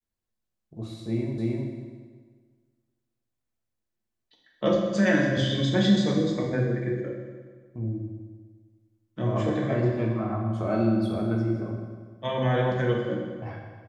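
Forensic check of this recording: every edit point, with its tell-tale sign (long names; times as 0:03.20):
0:01.38: the same again, the last 0.31 s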